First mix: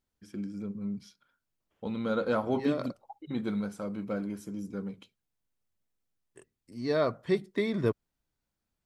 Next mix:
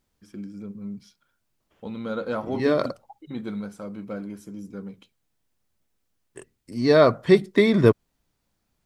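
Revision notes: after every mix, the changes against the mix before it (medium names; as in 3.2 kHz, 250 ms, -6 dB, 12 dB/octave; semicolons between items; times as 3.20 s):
second voice +11.5 dB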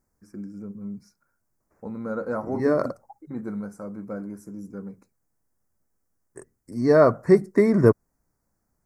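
master: add Butterworth band-stop 3.2 kHz, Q 0.79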